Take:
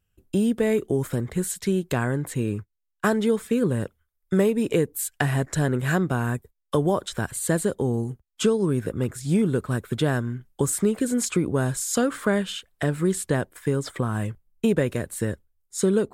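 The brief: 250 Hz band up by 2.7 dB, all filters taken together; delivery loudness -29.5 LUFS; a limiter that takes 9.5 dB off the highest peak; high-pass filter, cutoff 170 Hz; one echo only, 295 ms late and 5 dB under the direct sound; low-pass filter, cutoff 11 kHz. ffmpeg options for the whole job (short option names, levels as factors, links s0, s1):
-af "highpass=170,lowpass=11000,equalizer=f=250:t=o:g=5,alimiter=limit=0.15:level=0:latency=1,aecho=1:1:295:0.562,volume=0.708"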